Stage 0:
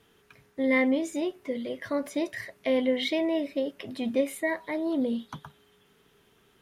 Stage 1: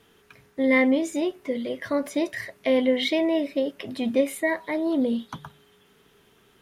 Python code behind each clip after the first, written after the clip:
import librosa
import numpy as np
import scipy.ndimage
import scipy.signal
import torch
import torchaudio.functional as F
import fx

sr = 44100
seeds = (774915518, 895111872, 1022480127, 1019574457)

y = fx.hum_notches(x, sr, base_hz=50, count=3)
y = y * 10.0 ** (4.0 / 20.0)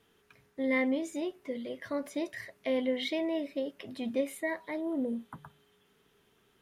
y = fx.spec_repair(x, sr, seeds[0], start_s=4.83, length_s=0.7, low_hz=2100.0, high_hz=7100.0, source='after')
y = y * 10.0 ** (-9.0 / 20.0)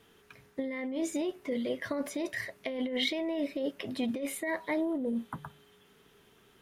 y = fx.over_compress(x, sr, threshold_db=-35.0, ratio=-1.0)
y = y * 10.0 ** (3.0 / 20.0)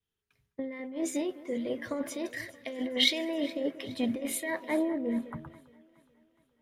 y = fx.echo_alternate(x, sr, ms=209, hz=1800.0, feedback_pct=81, wet_db=-12)
y = fx.band_widen(y, sr, depth_pct=100)